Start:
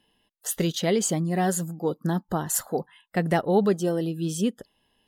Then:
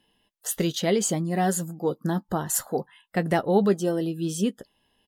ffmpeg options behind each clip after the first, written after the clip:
-filter_complex "[0:a]asplit=2[a][b];[b]adelay=15,volume=-13.5dB[c];[a][c]amix=inputs=2:normalize=0"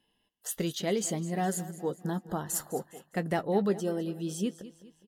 -af "aecho=1:1:205|410|615|820:0.158|0.0697|0.0307|0.0135,volume=-6.5dB"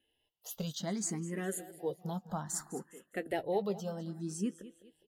-filter_complex "[0:a]asplit=2[a][b];[b]afreqshift=0.62[c];[a][c]amix=inputs=2:normalize=1,volume=-2.5dB"

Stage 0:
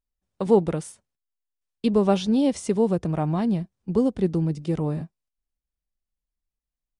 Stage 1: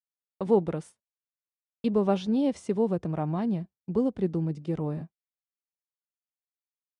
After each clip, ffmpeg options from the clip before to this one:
-af "highpass=f=89:p=1,highshelf=f=4.3k:g=-11,agate=range=-33dB:threshold=-36dB:ratio=3:detection=peak,volume=-4dB"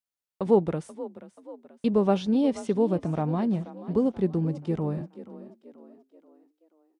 -filter_complex "[0:a]asplit=5[a][b][c][d][e];[b]adelay=482,afreqshift=39,volume=-16dB[f];[c]adelay=964,afreqshift=78,volume=-22.7dB[g];[d]adelay=1446,afreqshift=117,volume=-29.5dB[h];[e]adelay=1928,afreqshift=156,volume=-36.2dB[i];[a][f][g][h][i]amix=inputs=5:normalize=0,volume=2dB"

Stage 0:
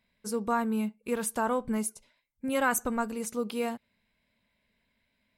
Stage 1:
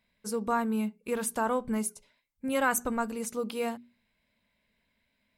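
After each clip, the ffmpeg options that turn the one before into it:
-af "bandreject=f=60:t=h:w=6,bandreject=f=120:t=h:w=6,bandreject=f=180:t=h:w=6,bandreject=f=240:t=h:w=6,bandreject=f=300:t=h:w=6,bandreject=f=360:t=h:w=6,bandreject=f=420:t=h:w=6"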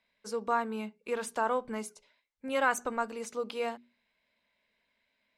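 -filter_complex "[0:a]acrossover=split=320 6900:gain=0.224 1 0.141[a][b][c];[a][b][c]amix=inputs=3:normalize=0"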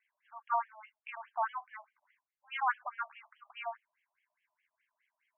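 -af "afftfilt=real='re*between(b*sr/1024,820*pow(2400/820,0.5+0.5*sin(2*PI*4.8*pts/sr))/1.41,820*pow(2400/820,0.5+0.5*sin(2*PI*4.8*pts/sr))*1.41)':imag='im*between(b*sr/1024,820*pow(2400/820,0.5+0.5*sin(2*PI*4.8*pts/sr))/1.41,820*pow(2400/820,0.5+0.5*sin(2*PI*4.8*pts/sr))*1.41)':win_size=1024:overlap=0.75"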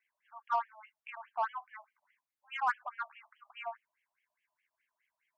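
-af "aeval=exprs='0.126*(cos(1*acos(clip(val(0)/0.126,-1,1)))-cos(1*PI/2))+0.00316*(cos(7*acos(clip(val(0)/0.126,-1,1)))-cos(7*PI/2))':c=same"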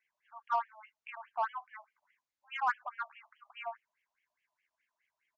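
-af "aresample=16000,aresample=44100"

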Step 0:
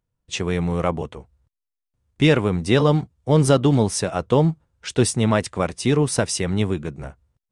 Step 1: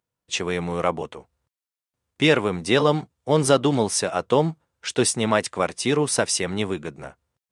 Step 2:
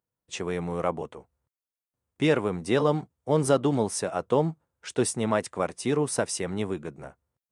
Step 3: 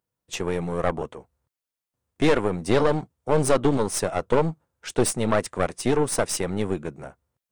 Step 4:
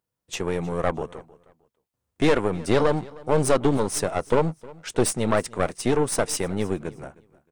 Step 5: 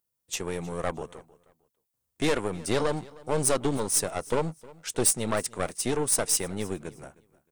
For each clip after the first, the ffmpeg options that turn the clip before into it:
-af "highpass=f=420:p=1,volume=2dB"
-af "equalizer=f=3.7k:t=o:w=2.3:g=-8,volume=-3.5dB"
-af "aeval=exprs='(tanh(11.2*val(0)+0.8)-tanh(0.8))/11.2':c=same,volume=8.5dB"
-af "aecho=1:1:311|622:0.0794|0.0191"
-af "crystalizer=i=2.5:c=0,volume=-6.5dB"

